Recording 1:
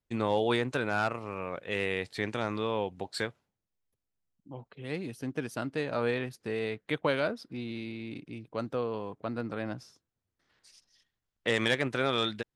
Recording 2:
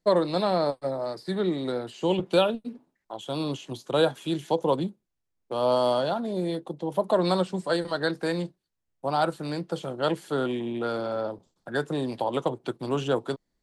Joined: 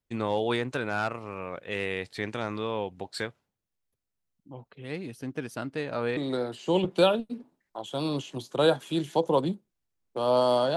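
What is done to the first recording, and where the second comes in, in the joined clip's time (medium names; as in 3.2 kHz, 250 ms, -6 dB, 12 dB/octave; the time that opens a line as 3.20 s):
recording 1
6.17 s: go over to recording 2 from 1.52 s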